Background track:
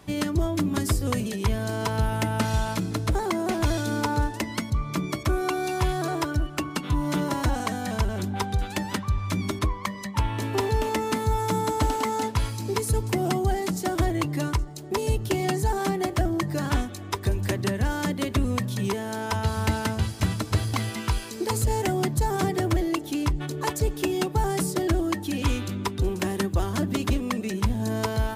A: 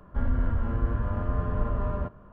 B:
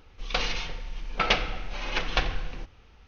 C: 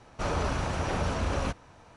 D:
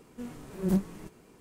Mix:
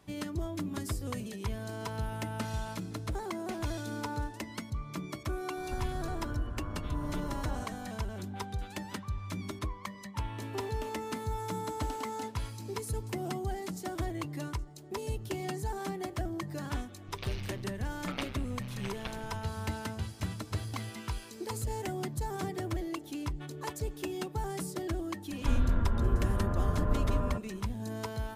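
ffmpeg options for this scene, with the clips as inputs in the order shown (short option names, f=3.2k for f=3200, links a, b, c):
-filter_complex "[1:a]asplit=2[a][b];[0:a]volume=-11dB[c];[a]acompressor=threshold=-42dB:ratio=3:attack=52:release=135:knee=1:detection=peak[d];[2:a]tremolo=f=130:d=0.974[e];[d]atrim=end=2.32,asetpts=PTS-STARTPTS,volume=-0.5dB,afade=t=in:d=0.004:c=hsin,afade=t=out:st=2.316:d=0.004:c=hsin,adelay=245637S[f];[e]atrim=end=3.07,asetpts=PTS-STARTPTS,volume=-12dB,afade=t=in:d=0.004:c=hsin,afade=t=out:st=3.066:d=0.004:c=hsin,adelay=16880[g];[b]atrim=end=2.32,asetpts=PTS-STARTPTS,volume=-2dB,afade=t=in:d=0.004:c=hsin,afade=t=out:st=2.316:d=0.004:c=hsin,adelay=25300[h];[c][f][g][h]amix=inputs=4:normalize=0"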